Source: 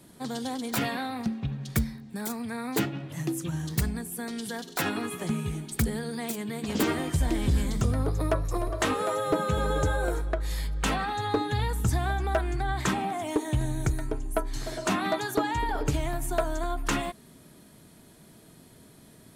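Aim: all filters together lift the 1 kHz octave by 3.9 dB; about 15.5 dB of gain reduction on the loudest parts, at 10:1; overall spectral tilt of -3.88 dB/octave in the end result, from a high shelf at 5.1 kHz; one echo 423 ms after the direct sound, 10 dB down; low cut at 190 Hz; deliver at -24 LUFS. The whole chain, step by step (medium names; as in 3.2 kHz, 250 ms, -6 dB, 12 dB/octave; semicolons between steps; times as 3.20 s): high-pass 190 Hz; peaking EQ 1 kHz +5 dB; treble shelf 5.1 kHz +5.5 dB; compression 10:1, threshold -36 dBFS; delay 423 ms -10 dB; trim +15.5 dB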